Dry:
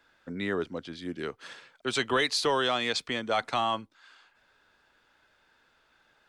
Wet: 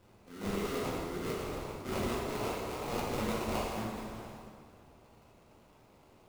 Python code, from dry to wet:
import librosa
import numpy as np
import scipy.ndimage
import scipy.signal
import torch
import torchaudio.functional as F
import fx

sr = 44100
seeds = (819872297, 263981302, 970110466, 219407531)

p1 = fx.cvsd(x, sr, bps=16000)
p2 = fx.spec_gate(p1, sr, threshold_db=-20, keep='strong')
p3 = fx.tilt_eq(p2, sr, slope=3.0)
p4 = fx.hum_notches(p3, sr, base_hz=60, count=7)
p5 = fx.level_steps(p4, sr, step_db=20)
p6 = p4 + F.gain(torch.from_numpy(p5), 1.0).numpy()
p7 = fx.transient(p6, sr, attack_db=-7, sustain_db=11)
p8 = fx.over_compress(p7, sr, threshold_db=-32.0, ratio=-0.5)
p9 = fx.sample_hold(p8, sr, seeds[0], rate_hz=1700.0, jitter_pct=20)
p10 = fx.rev_plate(p9, sr, seeds[1], rt60_s=2.1, hf_ratio=0.65, predelay_ms=0, drr_db=-5.0)
y = F.gain(torch.from_numpy(p10), -7.5).numpy()